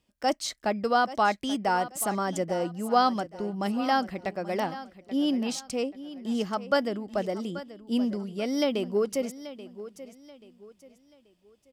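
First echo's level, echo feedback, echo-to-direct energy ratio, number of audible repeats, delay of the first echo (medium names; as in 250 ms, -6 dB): -15.0 dB, 34%, -14.5 dB, 3, 833 ms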